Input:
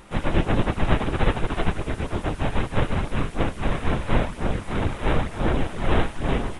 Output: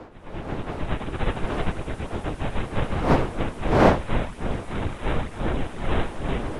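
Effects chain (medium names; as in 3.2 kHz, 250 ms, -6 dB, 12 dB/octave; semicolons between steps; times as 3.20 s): fade-in on the opening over 1.41 s; wind noise 640 Hz -25 dBFS; trim -3.5 dB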